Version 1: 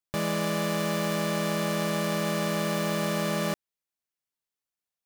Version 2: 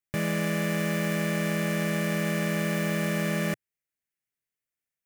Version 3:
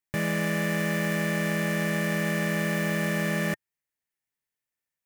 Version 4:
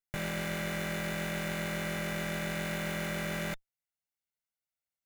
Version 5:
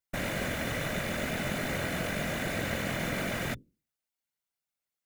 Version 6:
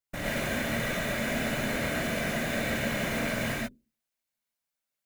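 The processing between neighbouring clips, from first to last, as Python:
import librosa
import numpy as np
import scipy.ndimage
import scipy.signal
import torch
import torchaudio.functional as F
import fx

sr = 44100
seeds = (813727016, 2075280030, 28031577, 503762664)

y1 = fx.graphic_eq(x, sr, hz=(125, 1000, 2000, 4000), db=(5, -9, 8, -8))
y2 = fx.small_body(y1, sr, hz=(900.0, 1800.0), ring_ms=30, db=7)
y3 = fx.lower_of_two(y2, sr, delay_ms=1.4)
y3 = F.gain(torch.from_numpy(y3), -5.5).numpy()
y4 = fx.hum_notches(y3, sr, base_hz=50, count=9)
y4 = fx.whisperise(y4, sr, seeds[0])
y4 = F.gain(torch.from_numpy(y4), 2.5).numpy()
y5 = fx.rev_gated(y4, sr, seeds[1], gate_ms=150, shape='rising', drr_db=-4.0)
y5 = F.gain(torch.from_numpy(y5), -3.0).numpy()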